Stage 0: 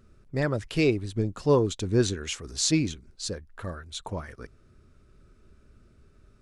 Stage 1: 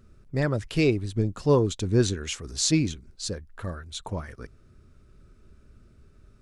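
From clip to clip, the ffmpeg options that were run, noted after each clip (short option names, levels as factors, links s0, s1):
-af "bass=f=250:g=3,treble=f=4000:g=1"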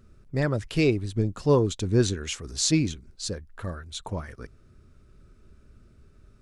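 -af anull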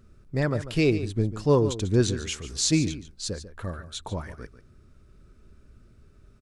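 -af "aecho=1:1:144:0.224"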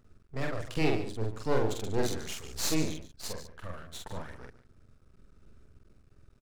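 -filter_complex "[0:a]aeval=exprs='max(val(0),0)':c=same,asplit=2[s0][s1];[s1]adelay=45,volume=0.75[s2];[s0][s2]amix=inputs=2:normalize=0,volume=0.631"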